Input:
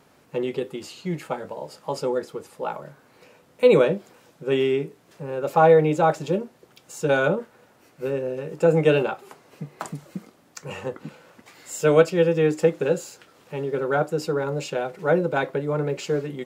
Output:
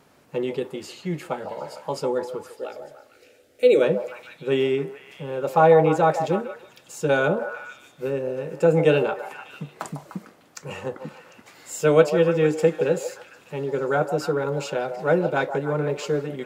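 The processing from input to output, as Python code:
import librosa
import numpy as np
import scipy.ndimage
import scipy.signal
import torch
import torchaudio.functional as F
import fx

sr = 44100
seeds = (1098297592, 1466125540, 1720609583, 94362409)

p1 = fx.fixed_phaser(x, sr, hz=410.0, stages=4, at=(2.52, 3.81), fade=0.02)
y = p1 + fx.echo_stepped(p1, sr, ms=150, hz=710.0, octaves=0.7, feedback_pct=70, wet_db=-6.0, dry=0)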